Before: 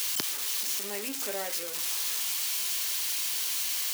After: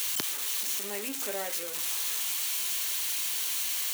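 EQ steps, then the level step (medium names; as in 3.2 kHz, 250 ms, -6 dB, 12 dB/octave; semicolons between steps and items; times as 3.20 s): peaking EQ 5 kHz -5.5 dB 0.27 oct; 0.0 dB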